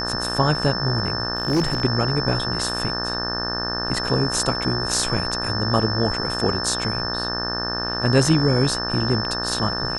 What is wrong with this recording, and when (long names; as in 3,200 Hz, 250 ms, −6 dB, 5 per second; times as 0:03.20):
mains buzz 60 Hz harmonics 30 −29 dBFS
whistle 5,300 Hz −26 dBFS
0:01.35–0:01.82: clipping −15 dBFS